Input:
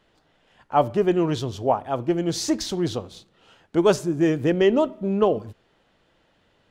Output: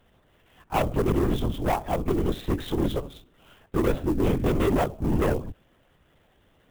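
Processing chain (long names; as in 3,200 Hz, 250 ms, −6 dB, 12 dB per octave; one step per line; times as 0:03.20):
low-shelf EQ 180 Hz +5.5 dB
hard clipping −20 dBFS, distortion −8 dB
linear-prediction vocoder at 8 kHz whisper
converter with an unsteady clock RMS 0.021 ms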